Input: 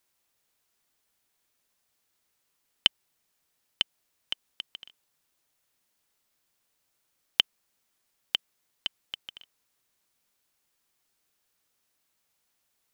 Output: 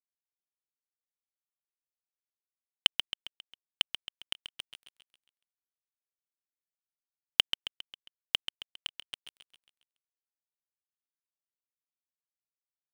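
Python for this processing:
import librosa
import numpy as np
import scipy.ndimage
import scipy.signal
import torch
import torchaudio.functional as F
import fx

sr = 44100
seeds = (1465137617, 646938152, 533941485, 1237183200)

y = np.sign(x) * np.maximum(np.abs(x) - 10.0 ** (-30.5 / 20.0), 0.0)
y = fx.echo_feedback(y, sr, ms=135, feedback_pct=50, wet_db=-10)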